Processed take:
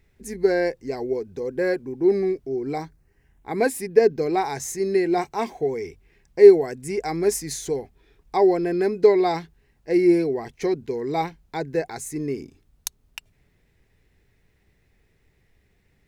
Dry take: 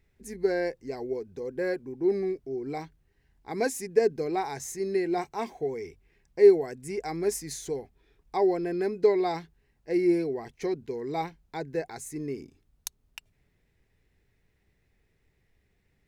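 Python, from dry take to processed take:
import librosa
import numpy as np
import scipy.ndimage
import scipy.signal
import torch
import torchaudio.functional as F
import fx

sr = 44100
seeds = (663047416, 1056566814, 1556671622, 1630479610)

y = fx.peak_eq(x, sr, hz=fx.line((2.75, 2600.0), (4.21, 9600.0)), db=-12.5, octaves=0.46, at=(2.75, 4.21), fade=0.02)
y = F.gain(torch.from_numpy(y), 6.5).numpy()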